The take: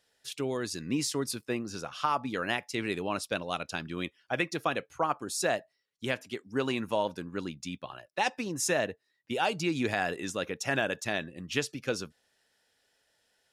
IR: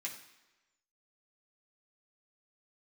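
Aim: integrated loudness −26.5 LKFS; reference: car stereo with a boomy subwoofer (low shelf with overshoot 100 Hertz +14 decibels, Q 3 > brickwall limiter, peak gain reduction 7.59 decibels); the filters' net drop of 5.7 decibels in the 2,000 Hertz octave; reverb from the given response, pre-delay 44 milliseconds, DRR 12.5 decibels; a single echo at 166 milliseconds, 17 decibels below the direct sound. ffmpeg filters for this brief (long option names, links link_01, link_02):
-filter_complex "[0:a]equalizer=frequency=2000:width_type=o:gain=-7.5,aecho=1:1:166:0.141,asplit=2[link_01][link_02];[1:a]atrim=start_sample=2205,adelay=44[link_03];[link_02][link_03]afir=irnorm=-1:irlink=0,volume=-12dB[link_04];[link_01][link_04]amix=inputs=2:normalize=0,lowshelf=frequency=100:width_type=q:width=3:gain=14,volume=9.5dB,alimiter=limit=-14dB:level=0:latency=1"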